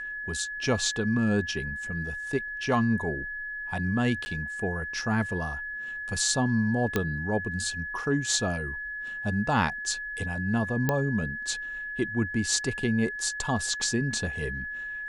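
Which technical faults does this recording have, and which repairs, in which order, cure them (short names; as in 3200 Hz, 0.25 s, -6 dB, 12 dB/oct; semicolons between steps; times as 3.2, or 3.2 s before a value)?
tone 1700 Hz -33 dBFS
4.25–4.26 gap 10 ms
6.96 pop -11 dBFS
10.89 pop -11 dBFS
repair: de-click; notch 1700 Hz, Q 30; interpolate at 4.25, 10 ms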